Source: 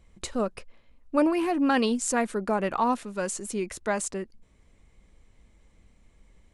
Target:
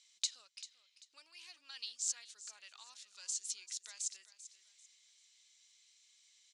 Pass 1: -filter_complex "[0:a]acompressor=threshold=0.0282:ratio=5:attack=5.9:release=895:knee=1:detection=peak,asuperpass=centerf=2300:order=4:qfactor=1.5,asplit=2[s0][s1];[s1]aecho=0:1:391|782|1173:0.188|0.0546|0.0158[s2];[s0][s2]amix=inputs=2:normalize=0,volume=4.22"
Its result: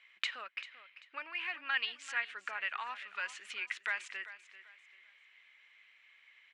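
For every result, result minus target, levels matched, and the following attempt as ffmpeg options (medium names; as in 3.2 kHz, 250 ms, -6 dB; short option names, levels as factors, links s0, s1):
2 kHz band +19.0 dB; compression: peak gain reduction -5.5 dB
-filter_complex "[0:a]acompressor=threshold=0.0282:ratio=5:attack=5.9:release=895:knee=1:detection=peak,asuperpass=centerf=5100:order=4:qfactor=1.5,asplit=2[s0][s1];[s1]aecho=0:1:391|782|1173:0.188|0.0546|0.0158[s2];[s0][s2]amix=inputs=2:normalize=0,volume=4.22"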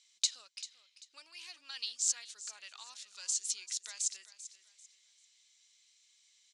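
compression: peak gain reduction -5.5 dB
-filter_complex "[0:a]acompressor=threshold=0.0126:ratio=5:attack=5.9:release=895:knee=1:detection=peak,asuperpass=centerf=5100:order=4:qfactor=1.5,asplit=2[s0][s1];[s1]aecho=0:1:391|782|1173:0.188|0.0546|0.0158[s2];[s0][s2]amix=inputs=2:normalize=0,volume=4.22"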